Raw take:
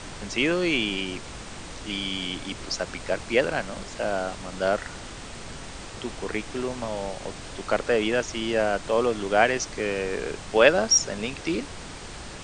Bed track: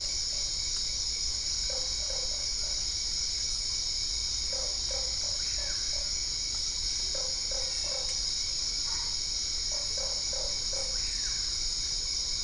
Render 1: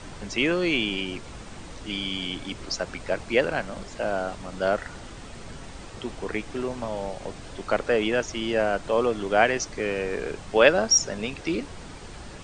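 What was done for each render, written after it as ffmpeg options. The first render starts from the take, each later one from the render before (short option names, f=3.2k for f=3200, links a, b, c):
-af "afftdn=nr=6:nf=-40"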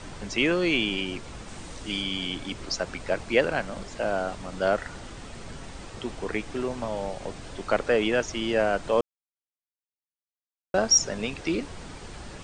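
-filter_complex "[0:a]asettb=1/sr,asplit=3[a][b][c];[a]atrim=end=1.484[d];[b]atrim=start=1.48:end=2.02,asetpts=PTS-STARTPTS,afade=t=in:d=0.004:c=qsin,afade=t=out:st=0.536:d=0.004:c=qsin,highshelf=f=7.3k:g=8[e];[c]atrim=start=2.016[f];[d][e]acrossfade=d=0.004:c1=hsin:c2=qsin[g];[g][f]acrossfade=d=0.004:c1=qsin:c2=hsin,asplit=3[h][i][j];[h]atrim=end=9.01,asetpts=PTS-STARTPTS,afade=t=out:st=9.006:d=0.004:c=hsin[k];[i]atrim=start=9.01:end=10.74,asetpts=PTS-STARTPTS,volume=0[l];[j]atrim=start=10.74,asetpts=PTS-STARTPTS,afade=t=in:d=0.004:c=hsin[m];[k][l][m]concat=n=3:v=0:a=1"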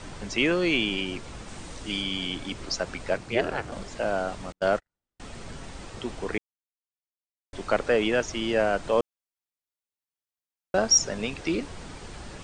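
-filter_complex "[0:a]asettb=1/sr,asplit=3[a][b][c];[a]atrim=end=3.174[d];[b]atrim=start=3.17:end=3.72,asetpts=PTS-STARTPTS,afade=t=in:d=0.004:c=qsin,afade=t=out:st=0.546:d=0.004:c=qsin,aeval=exprs='val(0)*sin(2*PI*120*n/s)':c=same[e];[c]atrim=start=3.716[f];[d][e]acrossfade=d=0.004:c1=hsin:c2=qsin[g];[g][f]acrossfade=d=0.004:c1=qsin:c2=hsin,asettb=1/sr,asplit=3[h][i][j];[h]atrim=end=4.524[k];[i]atrim=start=4.52:end=5.2,asetpts=PTS-STARTPTS,afade=t=in:d=0.004:c=qsin,afade=t=out:st=0.676:d=0.004:c=qsin,agate=range=-51dB:threshold=-30dB:ratio=16:release=100:detection=peak[l];[j]atrim=start=5.196[m];[k][l]acrossfade=d=0.004:c1=hsin:c2=qsin[n];[n][m]acrossfade=d=0.004:c1=qsin:c2=hsin,asplit=3[o][p][q];[o]atrim=end=6.38,asetpts=PTS-STARTPTS,afade=t=out:st=6.376:d=0.004:c=hsin[r];[p]atrim=start=6.38:end=7.53,asetpts=PTS-STARTPTS,volume=0[s];[q]atrim=start=7.53,asetpts=PTS-STARTPTS,afade=t=in:d=0.004:c=hsin[t];[r][s][t]concat=n=3:v=0:a=1"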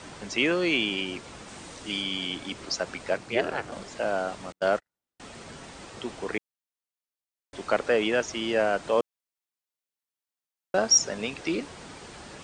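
-af "highpass=f=200:p=1"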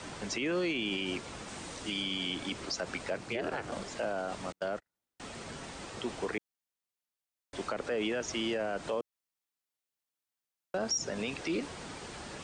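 -filter_complex "[0:a]acrossover=split=400[a][b];[b]acompressor=threshold=-29dB:ratio=2[c];[a][c]amix=inputs=2:normalize=0,alimiter=level_in=0.5dB:limit=-24dB:level=0:latency=1:release=53,volume=-0.5dB"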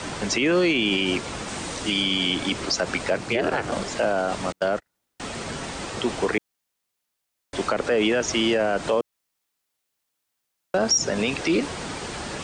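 -af "volume=11.5dB"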